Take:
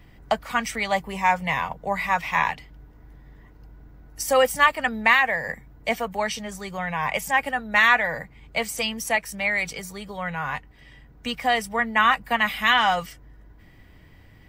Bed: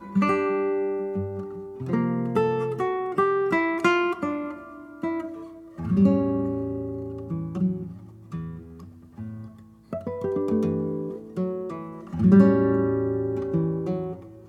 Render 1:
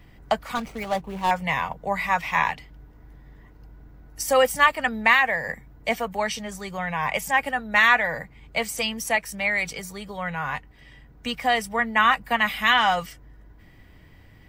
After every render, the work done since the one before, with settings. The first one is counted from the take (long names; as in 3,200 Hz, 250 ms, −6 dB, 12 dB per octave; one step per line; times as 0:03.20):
0:00.55–0:01.31: running median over 25 samples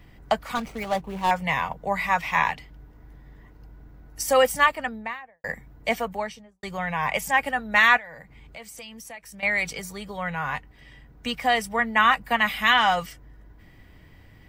0:04.48–0:05.44: fade out and dull
0:05.97–0:06.63: fade out and dull
0:07.97–0:09.43: downward compressor 3 to 1, threshold −43 dBFS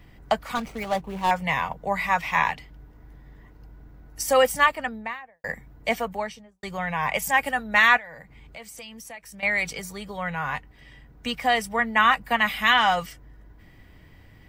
0:07.21–0:07.62: high-shelf EQ 9,500 Hz → 4,800 Hz +7.5 dB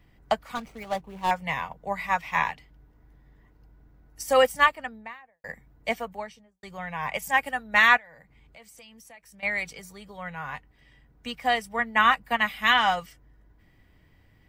expander for the loud parts 1.5 to 1, over −32 dBFS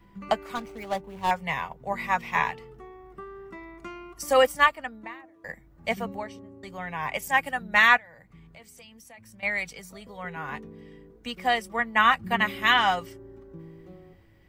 mix in bed −20 dB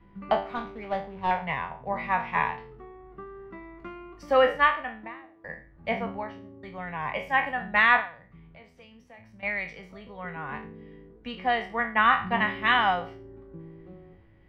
peak hold with a decay on every bin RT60 0.38 s
high-frequency loss of the air 330 metres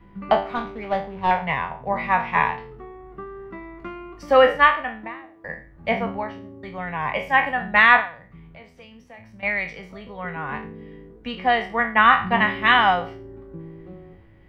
level +6 dB